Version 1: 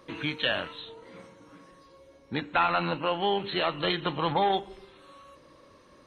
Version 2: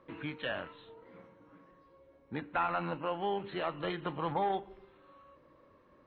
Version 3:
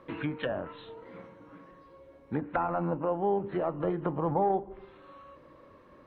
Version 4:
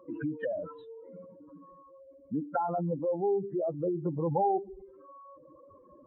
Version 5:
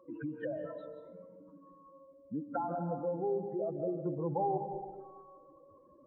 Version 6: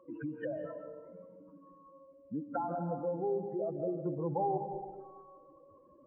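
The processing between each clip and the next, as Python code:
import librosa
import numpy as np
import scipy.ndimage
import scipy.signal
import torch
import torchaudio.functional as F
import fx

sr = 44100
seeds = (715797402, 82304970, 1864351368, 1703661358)

y1 = scipy.signal.sosfilt(scipy.signal.butter(2, 2000.0, 'lowpass', fs=sr, output='sos'), x)
y1 = y1 * 10.0 ** (-6.5 / 20.0)
y2 = fx.env_lowpass_down(y1, sr, base_hz=740.0, full_db=-33.5)
y2 = y2 * 10.0 ** (7.5 / 20.0)
y3 = fx.spec_expand(y2, sr, power=2.9)
y4 = fx.rev_freeverb(y3, sr, rt60_s=1.4, hf_ratio=0.35, predelay_ms=115, drr_db=6.5)
y4 = y4 * 10.0 ** (-5.5 / 20.0)
y5 = fx.brickwall_lowpass(y4, sr, high_hz=3100.0)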